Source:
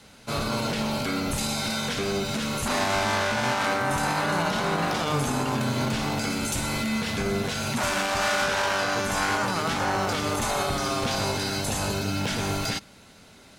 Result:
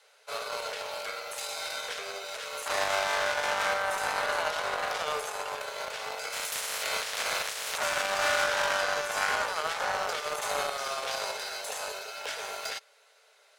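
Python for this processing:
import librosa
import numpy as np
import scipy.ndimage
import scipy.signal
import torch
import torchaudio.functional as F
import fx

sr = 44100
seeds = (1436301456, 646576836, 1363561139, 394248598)

y = fx.spec_clip(x, sr, under_db=24, at=(6.32, 7.76), fade=0.02)
y = scipy.signal.sosfilt(scipy.signal.cheby1(6, 3, 420.0, 'highpass', fs=sr, output='sos'), y)
y = fx.cheby_harmonics(y, sr, harmonics=(7,), levels_db=(-22,), full_scale_db=-13.0)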